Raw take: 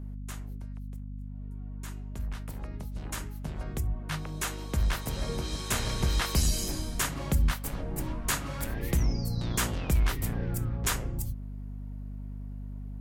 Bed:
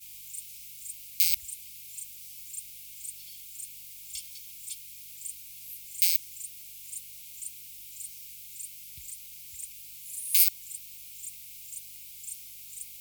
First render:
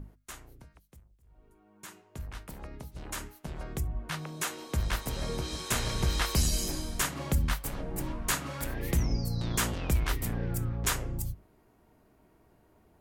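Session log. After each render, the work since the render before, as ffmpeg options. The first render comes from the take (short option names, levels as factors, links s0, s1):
-af "bandreject=f=50:t=h:w=6,bandreject=f=100:t=h:w=6,bandreject=f=150:t=h:w=6,bandreject=f=200:t=h:w=6,bandreject=f=250:t=h:w=6"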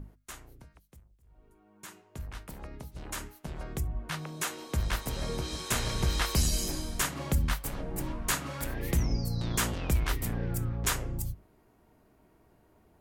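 -af anull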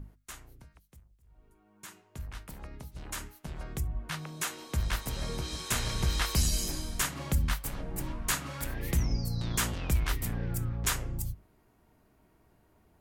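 -af "equalizer=f=450:w=0.6:g=-4"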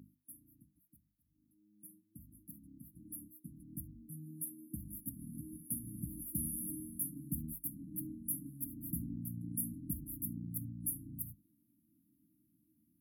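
-af "afftfilt=real='re*(1-between(b*sr/4096,330,9800))':imag='im*(1-between(b*sr/4096,330,9800))':win_size=4096:overlap=0.75,highpass=230"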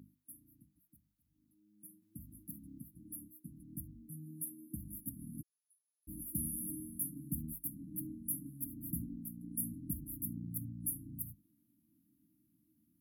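-filter_complex "[0:a]asplit=3[s0][s1][s2];[s0]afade=t=out:st=5.41:d=0.02[s3];[s1]asuperpass=centerf=5700:order=8:qfactor=1.7,afade=t=in:st=5.41:d=0.02,afade=t=out:st=6.07:d=0.02[s4];[s2]afade=t=in:st=6.07:d=0.02[s5];[s3][s4][s5]amix=inputs=3:normalize=0,asettb=1/sr,asplit=3[s6][s7][s8];[s6]atrim=end=9.054[s9];[s7]atrim=start=9.05:end=9.59,asetpts=PTS-STARTPTS,afade=t=in:d=0.004:c=qsin,afade=t=out:st=0.536:d=0.004:c=qsin,equalizer=f=110:t=o:w=0.77:g=-15[s10];[s8]atrim=start=9.586[s11];[s9][s10]acrossfade=d=0.004:c1=hsin:c2=qsin[s12];[s12][s11]acrossfade=d=0.004:c1=qsin:c2=hsin,asplit=3[s13][s14][s15];[s13]atrim=end=2.022[s16];[s14]atrim=start=2.018:end=2.832,asetpts=PTS-STARTPTS,volume=1.68[s17];[s15]atrim=start=2.828[s18];[s16][s17]acrossfade=d=0.004:c1=hsin:c2=hsin[s19];[s19][s18]acrossfade=d=0.004:c1=hsin:c2=hsin"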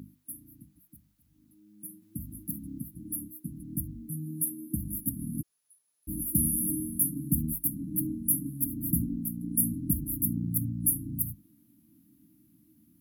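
-af "volume=3.98"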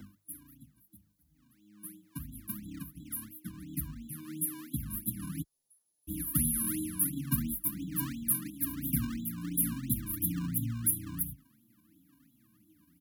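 -filter_complex "[0:a]acrossover=split=200|2800[s0][s1][s2];[s1]acrusher=samples=23:mix=1:aa=0.000001:lfo=1:lforange=23:lforate=2.9[s3];[s0][s3][s2]amix=inputs=3:normalize=0,asplit=2[s4][s5];[s5]adelay=6,afreqshift=-1.2[s6];[s4][s6]amix=inputs=2:normalize=1"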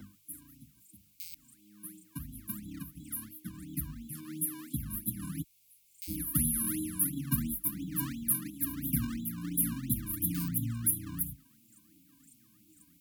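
-filter_complex "[1:a]volume=0.0891[s0];[0:a][s0]amix=inputs=2:normalize=0"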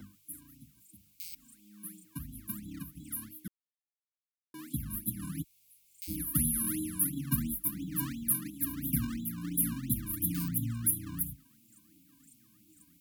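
-filter_complex "[0:a]asettb=1/sr,asplit=3[s0][s1][s2];[s0]atrim=end=1.244[s3];[s1]atrim=start=1.24:end=2.05,asetpts=PTS-STARTPTS,afade=t=in:d=0.004:c=qsin,afade=t=out:st=0.806:d=0.004:c=qsin,aecho=1:1:4.4:0.65,atrim=end_sample=35721[s4];[s2]atrim=start=2.046[s5];[s3][s4]acrossfade=d=0.004:c1=hsin:c2=qsin[s6];[s6][s5]acrossfade=d=0.004:c1=qsin:c2=hsin,asplit=3[s7][s8][s9];[s7]atrim=end=3.48,asetpts=PTS-STARTPTS,afade=t=out:st=3.476:d=0.004:c=hsin[s10];[s8]atrim=start=3.48:end=4.54,asetpts=PTS-STARTPTS,volume=0[s11];[s9]atrim=start=4.54,asetpts=PTS-STARTPTS,afade=t=in:d=0.004:c=hsin[s12];[s10][s11][s12]concat=n=3:v=0:a=1"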